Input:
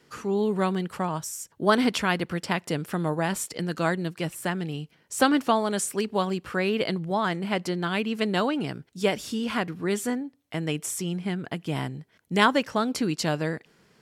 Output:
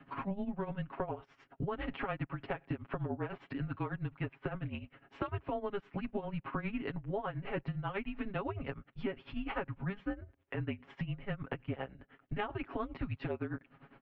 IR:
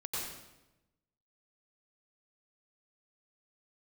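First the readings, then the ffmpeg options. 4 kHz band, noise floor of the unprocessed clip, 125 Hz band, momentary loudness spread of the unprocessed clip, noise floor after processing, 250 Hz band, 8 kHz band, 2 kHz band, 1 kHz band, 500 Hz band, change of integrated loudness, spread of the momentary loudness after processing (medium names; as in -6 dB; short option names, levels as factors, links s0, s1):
-21.0 dB, -64 dBFS, -7.5 dB, 9 LU, -70 dBFS, -13.0 dB, under -40 dB, -14.0 dB, -14.0 dB, -13.0 dB, -13.0 dB, 4 LU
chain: -af "highshelf=f=2200:g=-11,tremolo=f=9.9:d=0.83,highpass=f=310:t=q:w=0.5412,highpass=f=310:t=q:w=1.307,lowpass=f=3200:t=q:w=0.5176,lowpass=f=3200:t=q:w=0.7071,lowpass=f=3200:t=q:w=1.932,afreqshift=-200,aecho=1:1:7.3:0.91,alimiter=limit=0.1:level=0:latency=1:release=144,acompressor=threshold=0.00708:ratio=5,volume=2.37"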